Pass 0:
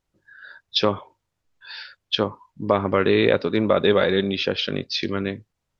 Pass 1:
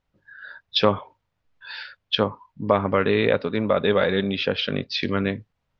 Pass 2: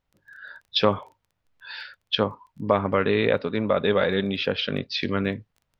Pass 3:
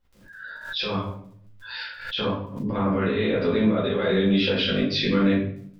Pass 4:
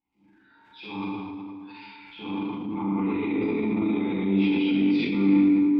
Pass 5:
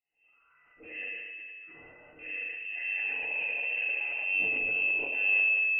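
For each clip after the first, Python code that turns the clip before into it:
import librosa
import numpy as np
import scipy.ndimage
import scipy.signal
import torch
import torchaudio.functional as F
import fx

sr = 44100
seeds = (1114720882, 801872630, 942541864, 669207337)

y1 = scipy.signal.sosfilt(scipy.signal.butter(2, 3700.0, 'lowpass', fs=sr, output='sos'), x)
y1 = fx.peak_eq(y1, sr, hz=350.0, db=-8.5, octaves=0.26)
y1 = fx.rider(y1, sr, range_db=10, speed_s=2.0)
y2 = fx.dmg_crackle(y1, sr, seeds[0], per_s=17.0, level_db=-43.0)
y2 = F.gain(torch.from_numpy(y2), -1.5).numpy()
y3 = fx.over_compress(y2, sr, threshold_db=-25.0, ratio=-1.0)
y3 = fx.room_shoebox(y3, sr, seeds[1], volume_m3=88.0, walls='mixed', distance_m=2.2)
y3 = fx.pre_swell(y3, sr, db_per_s=85.0)
y3 = F.gain(torch.from_numpy(y3), -8.0).numpy()
y4 = fx.vowel_filter(y3, sr, vowel='u')
y4 = fx.rev_plate(y4, sr, seeds[2], rt60_s=2.2, hf_ratio=0.65, predelay_ms=0, drr_db=-4.5)
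y4 = fx.transient(y4, sr, attack_db=-6, sustain_db=5)
y4 = F.gain(torch.from_numpy(y4), 4.0).numpy()
y5 = fx.freq_invert(y4, sr, carrier_hz=2900)
y5 = F.gain(torch.from_numpy(y5), -7.0).numpy()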